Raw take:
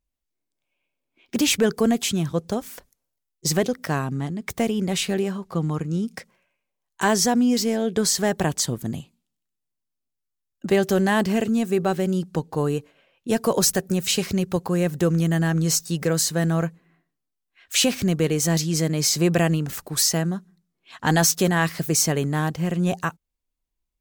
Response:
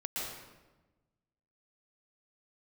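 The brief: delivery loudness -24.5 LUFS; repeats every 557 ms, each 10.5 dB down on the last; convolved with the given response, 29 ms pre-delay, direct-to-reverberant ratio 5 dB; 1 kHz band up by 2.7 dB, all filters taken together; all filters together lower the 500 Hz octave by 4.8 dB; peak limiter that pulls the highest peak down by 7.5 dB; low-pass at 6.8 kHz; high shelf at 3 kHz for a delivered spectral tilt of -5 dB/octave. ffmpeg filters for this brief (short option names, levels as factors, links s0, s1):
-filter_complex "[0:a]lowpass=6800,equalizer=f=500:t=o:g=-8,equalizer=f=1000:t=o:g=7,highshelf=f=3000:g=-5,alimiter=limit=0.178:level=0:latency=1,aecho=1:1:557|1114|1671:0.299|0.0896|0.0269,asplit=2[s0][s1];[1:a]atrim=start_sample=2205,adelay=29[s2];[s1][s2]afir=irnorm=-1:irlink=0,volume=0.376[s3];[s0][s3]amix=inputs=2:normalize=0,volume=1.06"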